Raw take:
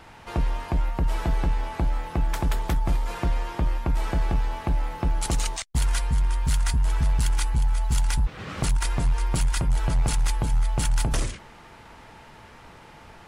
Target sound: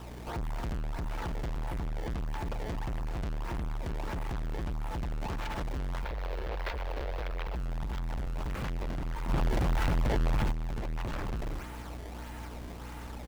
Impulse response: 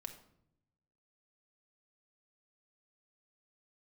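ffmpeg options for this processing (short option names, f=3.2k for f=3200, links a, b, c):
-filter_complex "[0:a]aeval=exprs='val(0)+0.00708*(sin(2*PI*60*n/s)+sin(2*PI*2*60*n/s)/2+sin(2*PI*3*60*n/s)/3+sin(2*PI*4*60*n/s)/4+sin(2*PI*5*60*n/s)/5)':c=same,asplit=2[a][b];[b]aecho=0:1:280:0.596[c];[a][c]amix=inputs=2:normalize=0,acrusher=samples=19:mix=1:aa=0.000001:lfo=1:lforange=30.4:lforate=1.6,acrossover=split=2700[d][e];[e]acompressor=threshold=-47dB:ratio=4:attack=1:release=60[f];[d][f]amix=inputs=2:normalize=0,alimiter=limit=-18.5dB:level=0:latency=1:release=270,volume=32dB,asoftclip=hard,volume=-32dB,asettb=1/sr,asplit=3[g][h][i];[g]atrim=end=6.044[j];[h]atrim=start=6.04:end=7.55,asetpts=PTS-STARTPTS,afade=t=in:d=0.004:c=qsin,afade=t=out:st=1.506:d=0.004:c=qsin,equalizer=f=125:t=o:w=1:g=-9,equalizer=f=250:t=o:w=1:g=-9,equalizer=f=500:t=o:w=1:g=11,equalizer=f=2k:t=o:w=1:g=4,equalizer=f=4k:t=o:w=1:g=5,equalizer=f=8k:t=o:w=1:g=-8[k];[i]atrim=start=7.546[l];[j][k]acrossfade=d=0.004:c1=hsin:c2=qsin[m];[m][l]acrossfade=d=0.004:c1=qsin:c2=hsin,asplit=3[n][o][p];[n]afade=t=out:st=9.28:d=0.02[q];[o]acontrast=85,afade=t=in:st=9.28:d=0.02,afade=t=out:st=10.51:d=0.02[r];[p]afade=t=in:st=10.51:d=0.02[s];[q][r][s]amix=inputs=3:normalize=0"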